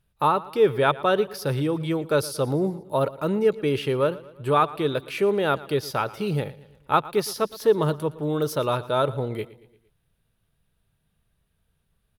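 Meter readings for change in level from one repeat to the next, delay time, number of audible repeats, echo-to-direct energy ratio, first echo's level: −6.0 dB, 115 ms, 3, −17.5 dB, −19.0 dB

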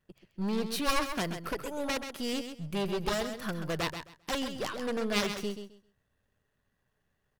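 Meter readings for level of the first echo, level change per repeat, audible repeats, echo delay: −8.5 dB, −14.0 dB, 2, 132 ms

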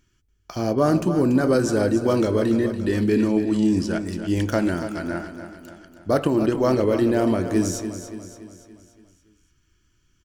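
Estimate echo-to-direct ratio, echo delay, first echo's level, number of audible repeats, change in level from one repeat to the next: −8.5 dB, 286 ms, −10.0 dB, 5, −6.0 dB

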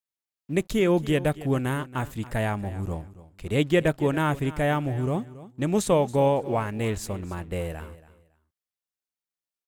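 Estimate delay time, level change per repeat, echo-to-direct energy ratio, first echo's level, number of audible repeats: 278 ms, −13.0 dB, −17.0 dB, −17.0 dB, 2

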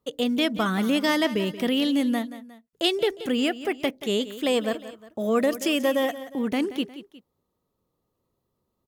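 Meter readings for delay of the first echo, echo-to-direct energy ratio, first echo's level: 179 ms, −13.5 dB, −14.5 dB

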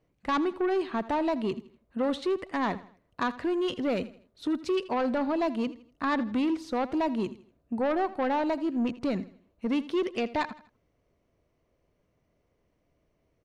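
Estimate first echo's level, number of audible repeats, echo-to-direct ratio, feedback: −17.0 dB, 3, −16.5 dB, 39%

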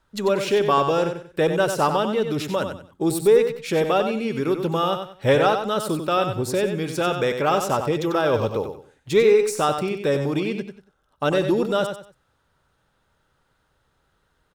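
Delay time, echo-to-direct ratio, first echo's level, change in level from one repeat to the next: 93 ms, −7.0 dB, −7.5 dB, −11.0 dB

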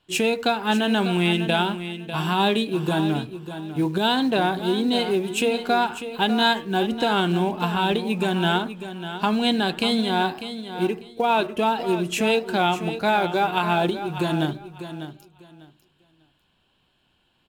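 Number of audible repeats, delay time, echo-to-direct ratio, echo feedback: 2, 597 ms, −11.0 dB, 21%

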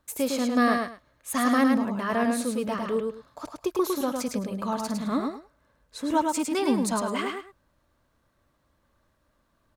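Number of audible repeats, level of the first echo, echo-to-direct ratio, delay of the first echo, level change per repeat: 2, −4.0 dB, −4.0 dB, 106 ms, −14.0 dB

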